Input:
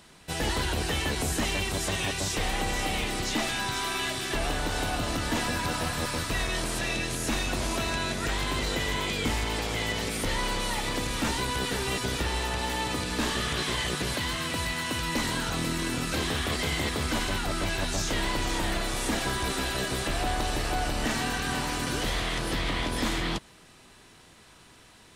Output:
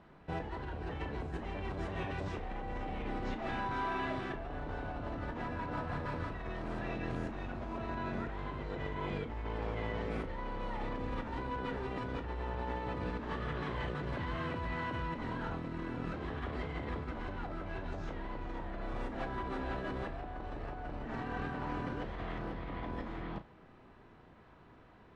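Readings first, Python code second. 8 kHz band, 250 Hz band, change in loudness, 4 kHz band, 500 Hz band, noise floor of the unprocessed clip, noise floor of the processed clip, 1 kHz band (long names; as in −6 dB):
below −35 dB, −8.0 dB, −11.0 dB, −23.0 dB, −7.5 dB, −54 dBFS, −58 dBFS, −8.0 dB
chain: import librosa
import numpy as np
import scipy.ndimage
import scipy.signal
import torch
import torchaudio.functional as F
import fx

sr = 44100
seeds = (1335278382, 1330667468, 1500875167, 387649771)

y = scipy.signal.sosfilt(scipy.signal.butter(2, 1300.0, 'lowpass', fs=sr, output='sos'), x)
y = fx.over_compress(y, sr, threshold_db=-34.0, ratio=-1.0)
y = fx.room_flutter(y, sr, wall_m=5.9, rt60_s=0.2)
y = F.gain(torch.from_numpy(y), -5.0).numpy()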